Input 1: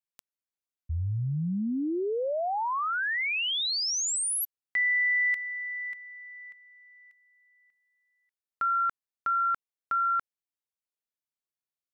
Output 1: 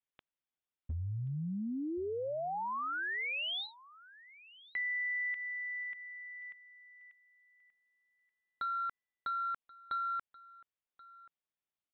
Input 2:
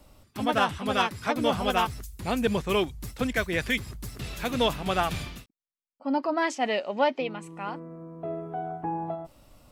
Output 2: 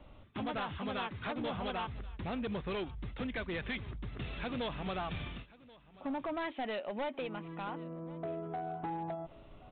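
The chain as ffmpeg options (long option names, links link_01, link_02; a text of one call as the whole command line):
ffmpeg -i in.wav -af "acompressor=threshold=-44dB:ratio=2:attack=68:release=146:detection=peak,aresample=8000,asoftclip=type=hard:threshold=-33dB,aresample=44100,aecho=1:1:1081:0.0891" out.wav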